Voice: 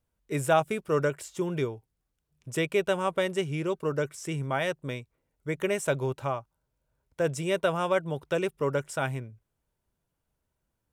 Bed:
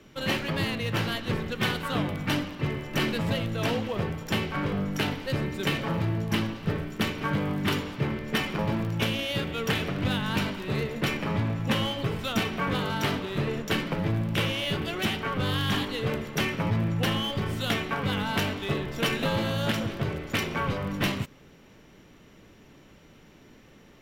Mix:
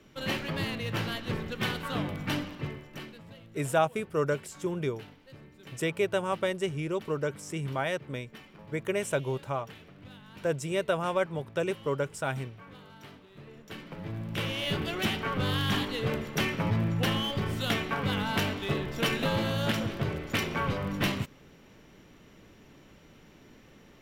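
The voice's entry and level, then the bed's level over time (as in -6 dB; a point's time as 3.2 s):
3.25 s, -2.0 dB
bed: 2.54 s -4 dB
3.24 s -22 dB
13.35 s -22 dB
14.69 s -1.5 dB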